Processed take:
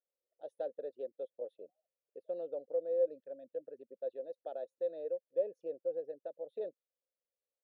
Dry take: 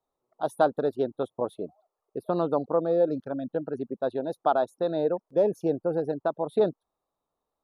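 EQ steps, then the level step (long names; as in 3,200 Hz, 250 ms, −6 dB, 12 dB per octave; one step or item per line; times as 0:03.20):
formant filter e
low-shelf EQ 270 Hz −8.5 dB
parametric band 1,500 Hz −8 dB 1.8 octaves
−3.0 dB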